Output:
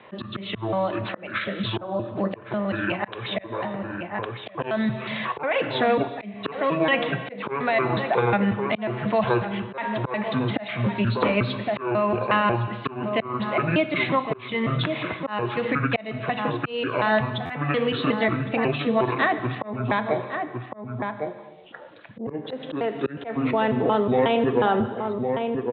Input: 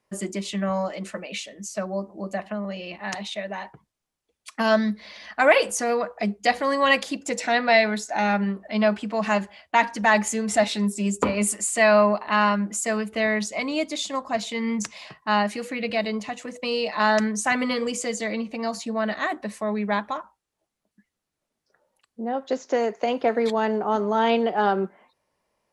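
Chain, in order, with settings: pitch shift switched off and on -9.5 st, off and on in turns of 181 ms; peak limiter -14 dBFS, peak gain reduction 8.5 dB; steep low-pass 3.8 kHz 96 dB/octave; echo from a far wall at 190 m, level -11 dB; gated-style reverb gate 420 ms falling, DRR 11.5 dB; slow attack 535 ms; high-pass 76 Hz 12 dB/octave; bass shelf 180 Hz -7 dB; buffer glitch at 17.45 s, samples 512, times 3; three bands compressed up and down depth 70%; trim +7 dB

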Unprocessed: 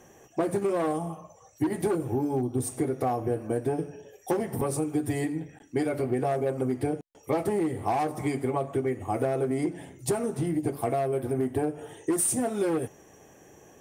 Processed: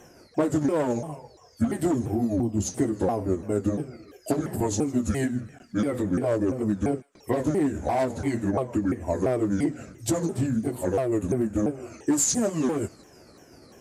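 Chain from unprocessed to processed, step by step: sawtooth pitch modulation -6.5 st, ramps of 343 ms; feedback echo behind a high-pass 155 ms, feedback 53%, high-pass 1.4 kHz, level -23 dB; trim +3.5 dB

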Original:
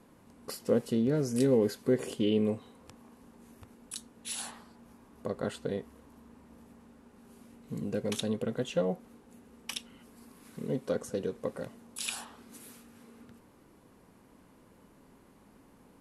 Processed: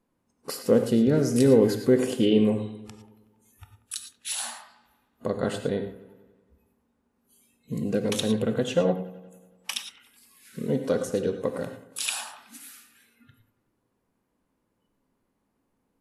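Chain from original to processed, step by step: spectral noise reduction 23 dB; feedback echo behind a low-pass 93 ms, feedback 64%, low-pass 2.3 kHz, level -16.5 dB; gated-style reverb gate 130 ms rising, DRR 8.5 dB; trim +6.5 dB

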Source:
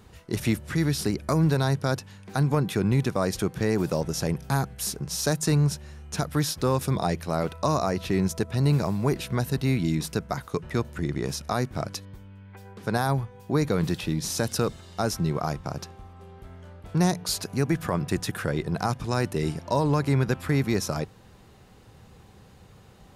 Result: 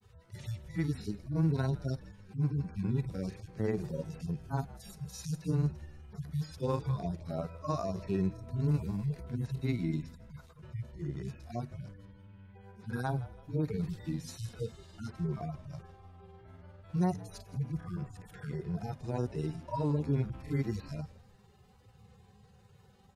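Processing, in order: harmonic-percussive separation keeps harmonic; granulator 100 ms, grains 20 per s, spray 15 ms, pitch spread up and down by 0 st; frequency-shifting echo 164 ms, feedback 38%, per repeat -71 Hz, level -18.5 dB; trim -6 dB

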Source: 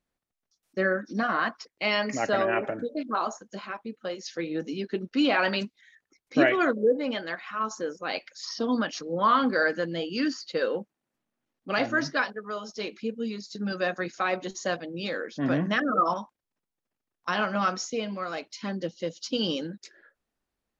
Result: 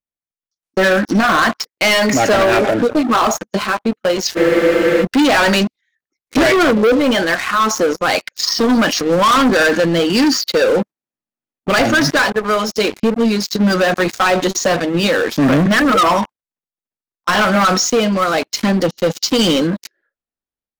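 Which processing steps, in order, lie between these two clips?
gate -44 dBFS, range -8 dB; waveshaping leveller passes 5; transient shaper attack +10 dB, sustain +6 dB; peak limiter -8.5 dBFS, peak gain reduction 9 dB; spectral freeze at 4.38 s, 0.64 s

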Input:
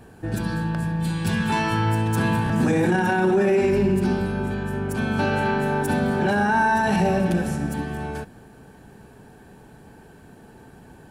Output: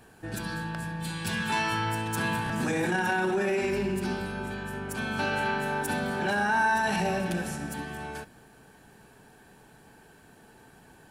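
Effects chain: tilt shelf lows -5 dB, about 780 Hz; on a send: reverberation RT60 0.50 s, pre-delay 3 ms, DRR 21 dB; on the sum: trim -5.5 dB

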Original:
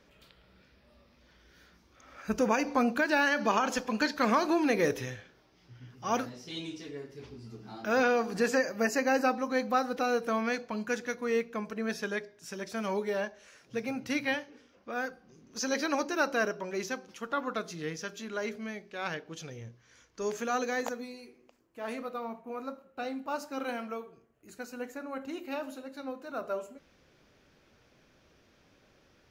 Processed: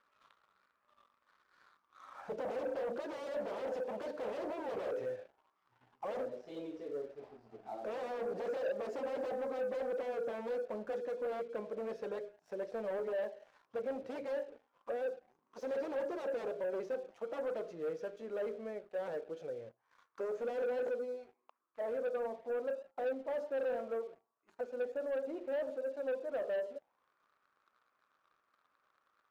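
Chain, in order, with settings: wavefolder -31 dBFS; auto-wah 530–1300 Hz, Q 5.6, down, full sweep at -39.5 dBFS; waveshaping leveller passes 2; trim +3.5 dB

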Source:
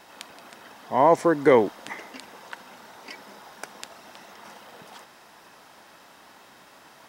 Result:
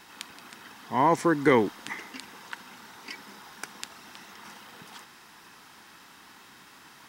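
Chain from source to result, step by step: peaking EQ 600 Hz -13.5 dB 0.74 oct; trim +1.5 dB

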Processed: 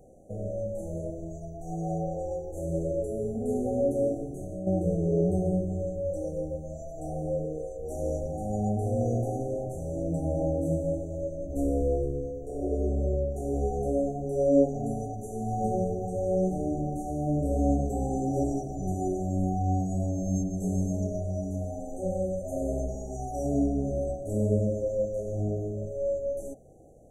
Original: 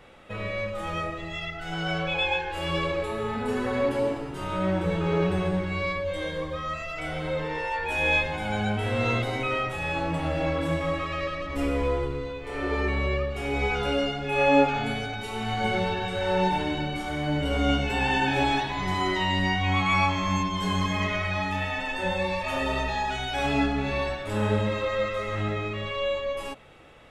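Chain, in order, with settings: peaking EQ 1.4 kHz -6 dB 0.9 oct; 4.25–4.67 s: compression 10:1, threshold -32 dBFS, peak gain reduction 9.5 dB; brick-wall FIR band-stop 800–5800 Hz

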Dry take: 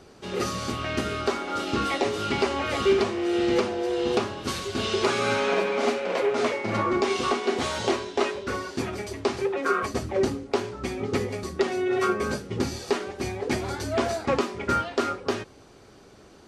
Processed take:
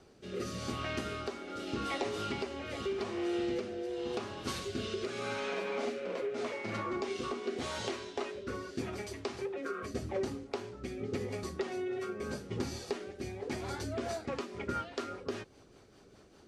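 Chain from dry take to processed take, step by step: compression, threshold -24 dBFS, peak gain reduction 8 dB; rotary cabinet horn 0.85 Hz, later 5 Hz, at 13.52 s; trim -6 dB

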